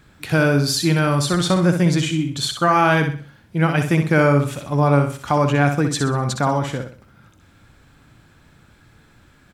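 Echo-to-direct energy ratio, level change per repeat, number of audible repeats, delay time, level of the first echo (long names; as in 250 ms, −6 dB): −6.5 dB, −9.0 dB, 4, 63 ms, −7.0 dB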